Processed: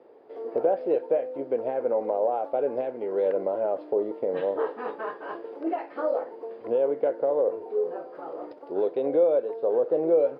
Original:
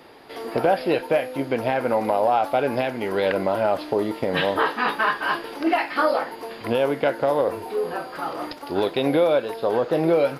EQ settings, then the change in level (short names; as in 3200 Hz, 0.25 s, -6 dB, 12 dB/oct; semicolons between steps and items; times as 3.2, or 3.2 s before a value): band-pass 470 Hz, Q 2.7; 0.0 dB